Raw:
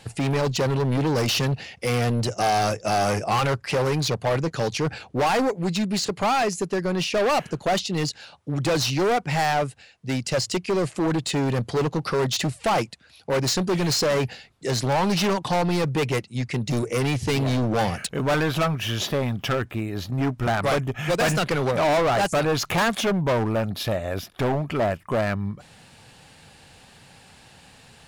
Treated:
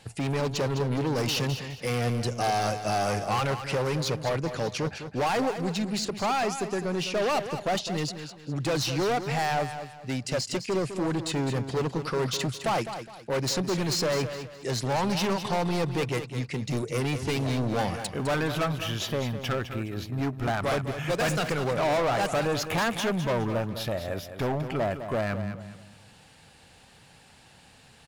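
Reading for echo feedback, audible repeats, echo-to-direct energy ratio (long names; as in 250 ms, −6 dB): 32%, 3, −9.5 dB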